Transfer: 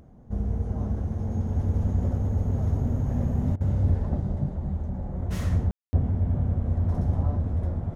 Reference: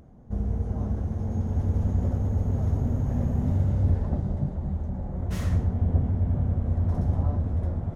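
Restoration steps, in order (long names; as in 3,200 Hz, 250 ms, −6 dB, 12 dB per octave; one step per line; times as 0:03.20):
ambience match 0:05.71–0:05.93
repair the gap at 0:03.56, 46 ms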